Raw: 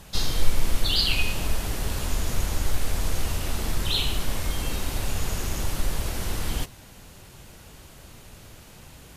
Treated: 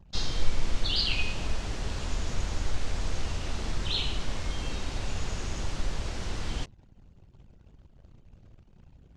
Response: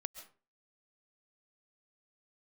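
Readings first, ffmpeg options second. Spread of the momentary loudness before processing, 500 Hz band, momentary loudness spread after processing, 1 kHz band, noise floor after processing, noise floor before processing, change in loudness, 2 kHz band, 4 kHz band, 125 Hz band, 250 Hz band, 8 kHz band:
22 LU, -4.5 dB, 7 LU, -4.5 dB, -57 dBFS, -48 dBFS, -5.0 dB, -4.5 dB, -4.5 dB, -4.5 dB, -4.5 dB, -9.0 dB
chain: -af "anlmdn=0.0631,lowpass=f=6900:w=0.5412,lowpass=f=6900:w=1.3066,volume=0.596"

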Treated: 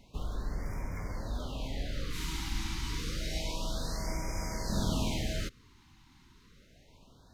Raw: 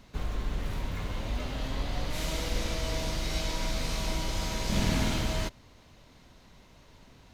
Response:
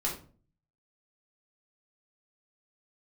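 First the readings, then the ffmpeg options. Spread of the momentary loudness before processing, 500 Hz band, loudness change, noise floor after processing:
7 LU, -5.0 dB, -4.0 dB, -61 dBFS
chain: -af "afftfilt=real='re*(1-between(b*sr/1024,520*pow(3500/520,0.5+0.5*sin(2*PI*0.29*pts/sr))/1.41,520*pow(3500/520,0.5+0.5*sin(2*PI*0.29*pts/sr))*1.41))':imag='im*(1-between(b*sr/1024,520*pow(3500/520,0.5+0.5*sin(2*PI*0.29*pts/sr))/1.41,520*pow(3500/520,0.5+0.5*sin(2*PI*0.29*pts/sr))*1.41))':win_size=1024:overlap=0.75,volume=0.668"

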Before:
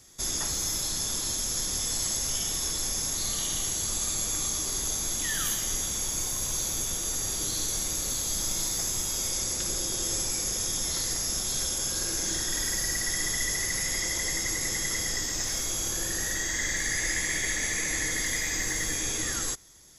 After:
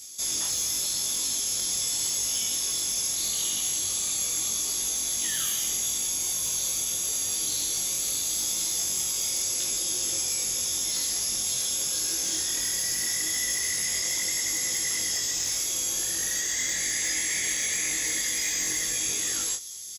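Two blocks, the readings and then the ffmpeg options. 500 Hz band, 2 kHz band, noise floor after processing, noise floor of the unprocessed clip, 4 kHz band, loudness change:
-4.5 dB, -2.0 dB, -29 dBFS, -31 dBFS, +2.5 dB, +2.0 dB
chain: -filter_complex "[0:a]aexciter=amount=4.8:drive=5.1:freq=2400,acrossover=split=2900[s0][s1];[s1]acompressor=threshold=0.0794:ratio=4:attack=1:release=60[s2];[s0][s2]amix=inputs=2:normalize=0,flanger=delay=18:depth=5.8:speed=0.82,highpass=f=160:p=1,asplit=2[s3][s4];[s4]adelay=22,volume=0.501[s5];[s3][s5]amix=inputs=2:normalize=0,asoftclip=type=hard:threshold=0.119,areverse,acompressor=mode=upward:threshold=0.0282:ratio=2.5,areverse,volume=0.794"

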